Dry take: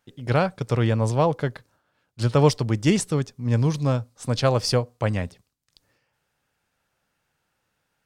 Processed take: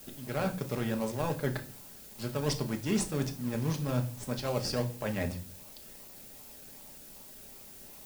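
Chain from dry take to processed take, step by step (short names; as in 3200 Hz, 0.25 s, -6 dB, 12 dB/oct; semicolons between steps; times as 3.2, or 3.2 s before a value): low shelf 160 Hz -7 dB; notches 60/120/180 Hz; reverse; compressor 6:1, threshold -32 dBFS, peak gain reduction 18 dB; reverse; added noise blue -52 dBFS; in parallel at -8 dB: decimation with a swept rate 34×, swing 60% 2.6 Hz; on the sum: reverb RT60 0.40 s, pre-delay 4 ms, DRR 3.5 dB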